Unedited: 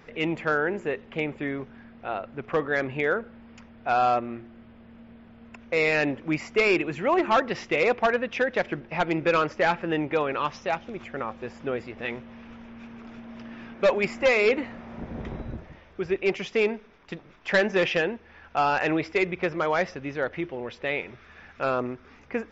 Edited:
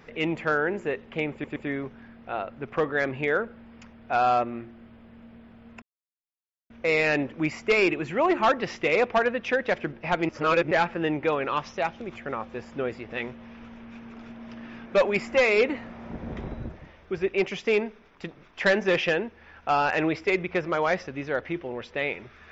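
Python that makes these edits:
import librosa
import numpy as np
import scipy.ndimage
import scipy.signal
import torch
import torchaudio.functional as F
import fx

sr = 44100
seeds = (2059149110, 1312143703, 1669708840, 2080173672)

y = fx.edit(x, sr, fx.stutter(start_s=1.32, slice_s=0.12, count=3),
    fx.insert_silence(at_s=5.58, length_s=0.88),
    fx.reverse_span(start_s=9.17, length_s=0.42), tone=tone)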